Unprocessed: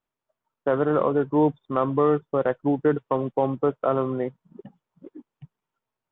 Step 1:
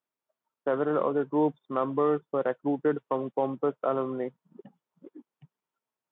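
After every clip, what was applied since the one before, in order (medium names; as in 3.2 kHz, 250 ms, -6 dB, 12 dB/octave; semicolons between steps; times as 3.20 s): high-pass 180 Hz 12 dB/octave; trim -4.5 dB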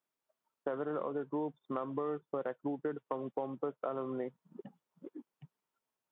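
compression 5:1, threshold -34 dBFS, peak gain reduction 13 dB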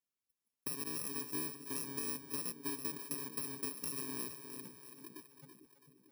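bit-reversed sample order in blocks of 64 samples; two-band feedback delay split 420 Hz, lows 447 ms, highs 331 ms, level -8 dB; trim -4.5 dB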